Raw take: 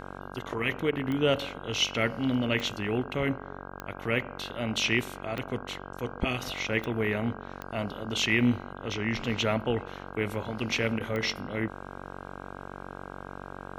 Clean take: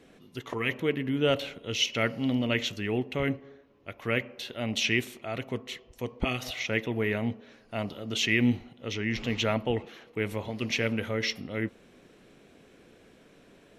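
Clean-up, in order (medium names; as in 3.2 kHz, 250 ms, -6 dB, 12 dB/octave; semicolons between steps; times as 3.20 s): de-click; de-hum 47.1 Hz, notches 34; interpolate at 0.91/3.70/10.99 s, 12 ms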